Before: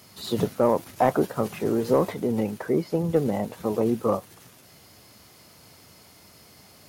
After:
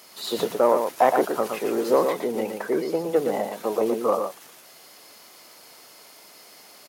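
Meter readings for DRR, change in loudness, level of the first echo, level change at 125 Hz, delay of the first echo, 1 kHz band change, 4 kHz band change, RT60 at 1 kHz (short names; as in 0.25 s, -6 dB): none, +1.5 dB, -6.0 dB, -13.0 dB, 0.117 s, +4.0 dB, +4.5 dB, none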